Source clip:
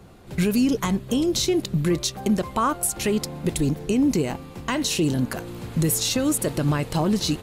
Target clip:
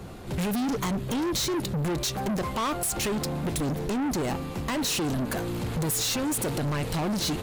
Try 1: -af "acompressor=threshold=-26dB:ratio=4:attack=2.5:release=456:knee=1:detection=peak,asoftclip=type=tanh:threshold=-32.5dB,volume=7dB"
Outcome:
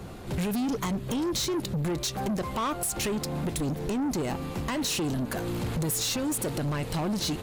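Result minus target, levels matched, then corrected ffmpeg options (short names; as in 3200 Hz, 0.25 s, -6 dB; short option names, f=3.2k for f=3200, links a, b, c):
compressor: peak gain reduction +5 dB
-af "acompressor=threshold=-19dB:ratio=4:attack=2.5:release=456:knee=1:detection=peak,asoftclip=type=tanh:threshold=-32.5dB,volume=7dB"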